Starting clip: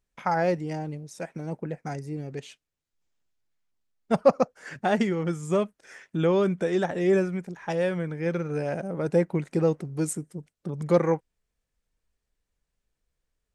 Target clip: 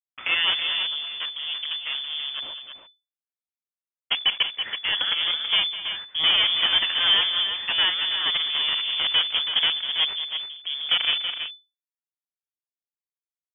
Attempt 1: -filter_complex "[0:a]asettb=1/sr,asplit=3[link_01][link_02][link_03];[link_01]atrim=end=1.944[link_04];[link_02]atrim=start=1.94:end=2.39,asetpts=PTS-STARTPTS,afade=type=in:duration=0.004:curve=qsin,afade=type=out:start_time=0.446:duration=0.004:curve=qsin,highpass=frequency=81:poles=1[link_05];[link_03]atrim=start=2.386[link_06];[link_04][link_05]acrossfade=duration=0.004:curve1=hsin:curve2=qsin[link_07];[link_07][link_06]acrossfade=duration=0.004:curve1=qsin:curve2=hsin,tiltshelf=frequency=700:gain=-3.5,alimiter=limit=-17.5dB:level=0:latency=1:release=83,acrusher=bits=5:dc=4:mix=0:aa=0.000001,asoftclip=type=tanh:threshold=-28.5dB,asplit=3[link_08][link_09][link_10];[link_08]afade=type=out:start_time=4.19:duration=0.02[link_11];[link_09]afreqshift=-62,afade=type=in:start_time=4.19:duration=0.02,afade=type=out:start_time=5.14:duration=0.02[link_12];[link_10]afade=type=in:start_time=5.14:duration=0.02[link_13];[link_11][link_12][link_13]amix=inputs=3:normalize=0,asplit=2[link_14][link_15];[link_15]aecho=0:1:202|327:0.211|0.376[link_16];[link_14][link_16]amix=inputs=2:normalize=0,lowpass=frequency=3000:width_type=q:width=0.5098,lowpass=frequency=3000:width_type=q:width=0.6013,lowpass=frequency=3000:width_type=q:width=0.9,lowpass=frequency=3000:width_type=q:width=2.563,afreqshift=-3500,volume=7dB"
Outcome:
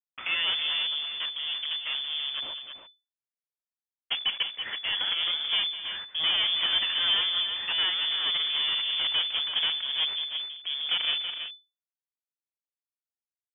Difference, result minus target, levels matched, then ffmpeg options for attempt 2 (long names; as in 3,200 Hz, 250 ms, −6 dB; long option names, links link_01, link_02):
soft clipping: distortion +9 dB
-filter_complex "[0:a]asettb=1/sr,asplit=3[link_01][link_02][link_03];[link_01]atrim=end=1.944[link_04];[link_02]atrim=start=1.94:end=2.39,asetpts=PTS-STARTPTS,afade=type=in:duration=0.004:curve=qsin,afade=type=out:start_time=0.446:duration=0.004:curve=qsin,highpass=frequency=81:poles=1[link_05];[link_03]atrim=start=2.386[link_06];[link_04][link_05]acrossfade=duration=0.004:curve1=hsin:curve2=qsin[link_07];[link_07][link_06]acrossfade=duration=0.004:curve1=qsin:curve2=hsin,tiltshelf=frequency=700:gain=-3.5,alimiter=limit=-17.5dB:level=0:latency=1:release=83,acrusher=bits=5:dc=4:mix=0:aa=0.000001,asoftclip=type=tanh:threshold=-20dB,asplit=3[link_08][link_09][link_10];[link_08]afade=type=out:start_time=4.19:duration=0.02[link_11];[link_09]afreqshift=-62,afade=type=in:start_time=4.19:duration=0.02,afade=type=out:start_time=5.14:duration=0.02[link_12];[link_10]afade=type=in:start_time=5.14:duration=0.02[link_13];[link_11][link_12][link_13]amix=inputs=3:normalize=0,asplit=2[link_14][link_15];[link_15]aecho=0:1:202|327:0.211|0.376[link_16];[link_14][link_16]amix=inputs=2:normalize=0,lowpass=frequency=3000:width_type=q:width=0.5098,lowpass=frequency=3000:width_type=q:width=0.6013,lowpass=frequency=3000:width_type=q:width=0.9,lowpass=frequency=3000:width_type=q:width=2.563,afreqshift=-3500,volume=7dB"